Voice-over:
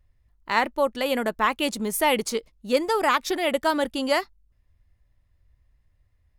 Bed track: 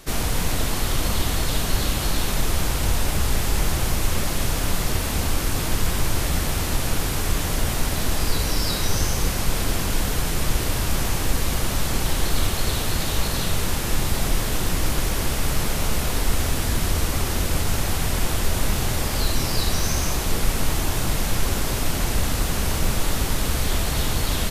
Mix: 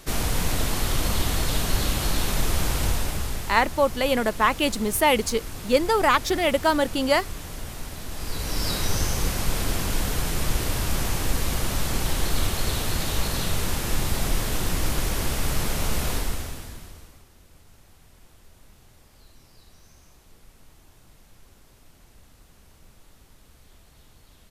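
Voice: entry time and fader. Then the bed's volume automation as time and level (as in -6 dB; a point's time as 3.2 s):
3.00 s, +2.0 dB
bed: 2.83 s -1.5 dB
3.67 s -12.5 dB
8.08 s -12.5 dB
8.67 s -2.5 dB
16.13 s -2.5 dB
17.29 s -31 dB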